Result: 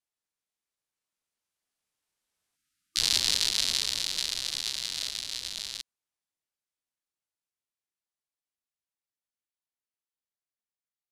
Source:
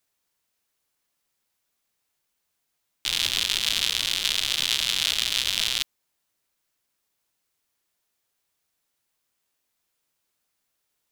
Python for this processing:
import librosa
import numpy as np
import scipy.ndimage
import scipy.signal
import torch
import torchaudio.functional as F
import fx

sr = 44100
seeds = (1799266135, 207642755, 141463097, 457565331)

y = fx.doppler_pass(x, sr, speed_mps=13, closest_m=9.2, pass_at_s=2.96)
y = scipy.signal.sosfilt(scipy.signal.butter(4, 9300.0, 'lowpass', fs=sr, output='sos'), y)
y = fx.formant_shift(y, sr, semitones=4)
y = fx.spec_erase(y, sr, start_s=2.56, length_s=0.44, low_hz=340.0, high_hz=1200.0)